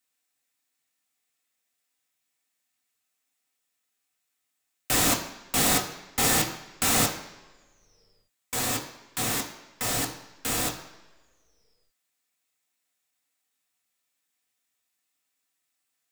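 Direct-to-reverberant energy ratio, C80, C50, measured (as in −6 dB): −0.5 dB, 11.0 dB, 9.0 dB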